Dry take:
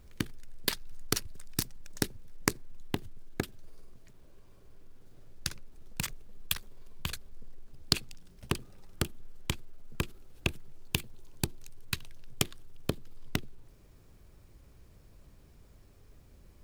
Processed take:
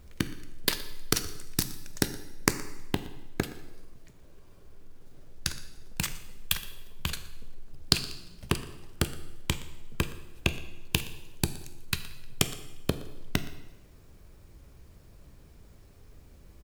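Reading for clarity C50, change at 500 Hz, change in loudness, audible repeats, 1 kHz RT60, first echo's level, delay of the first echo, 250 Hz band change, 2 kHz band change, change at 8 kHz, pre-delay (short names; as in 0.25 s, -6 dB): 12.0 dB, +4.0 dB, +3.5 dB, 1, 0.95 s, -20.0 dB, 0.119 s, +4.0 dB, +4.0 dB, +4.0 dB, 4 ms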